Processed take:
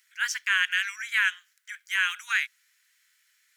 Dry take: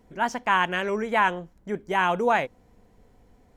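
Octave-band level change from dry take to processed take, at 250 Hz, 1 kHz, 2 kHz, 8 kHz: under -40 dB, -15.5 dB, +3.0 dB, n/a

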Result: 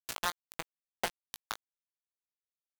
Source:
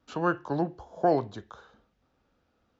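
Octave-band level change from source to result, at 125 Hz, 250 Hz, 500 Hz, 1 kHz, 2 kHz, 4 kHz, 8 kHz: -21.0 dB, -23.0 dB, -17.5 dB, -9.5 dB, -2.0 dB, +10.0 dB, n/a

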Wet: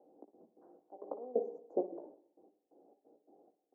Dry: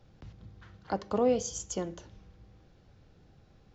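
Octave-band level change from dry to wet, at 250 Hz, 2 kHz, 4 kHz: -11.0 dB, under -35 dB, under -35 dB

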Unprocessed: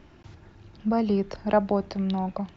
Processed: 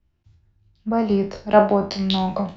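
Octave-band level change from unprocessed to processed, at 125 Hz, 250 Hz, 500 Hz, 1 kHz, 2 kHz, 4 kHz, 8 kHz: +4.5 dB, +4.0 dB, +7.0 dB, +7.5 dB, +8.0 dB, +15.0 dB, n/a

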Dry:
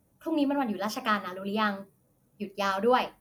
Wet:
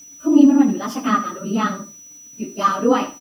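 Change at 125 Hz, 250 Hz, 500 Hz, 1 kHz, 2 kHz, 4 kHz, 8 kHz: +9.0, +15.0, +6.0, +7.0, +2.5, +2.5, +16.5 dB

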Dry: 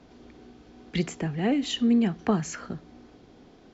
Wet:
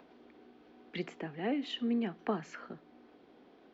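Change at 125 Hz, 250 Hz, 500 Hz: -15.5, -10.5, -7.0 dB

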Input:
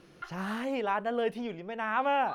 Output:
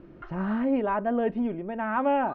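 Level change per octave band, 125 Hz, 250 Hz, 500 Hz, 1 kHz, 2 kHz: +7.0, +9.5, +4.0, +1.5, -0.5 dB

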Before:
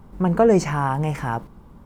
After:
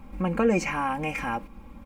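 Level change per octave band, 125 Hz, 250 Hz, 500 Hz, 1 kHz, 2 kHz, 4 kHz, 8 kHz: -10.5, -5.5, -8.0, -4.5, +1.0, -1.5, -4.0 dB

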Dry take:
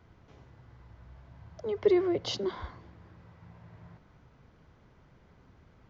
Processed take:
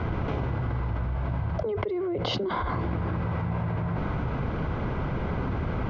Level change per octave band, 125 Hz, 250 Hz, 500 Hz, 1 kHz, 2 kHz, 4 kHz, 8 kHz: +21.5 dB, +5.0 dB, +1.0 dB, +14.5 dB, +12.5 dB, +4.0 dB, n/a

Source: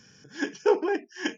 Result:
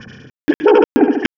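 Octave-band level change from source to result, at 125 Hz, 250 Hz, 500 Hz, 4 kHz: n/a, +17.5 dB, +12.5 dB, +9.5 dB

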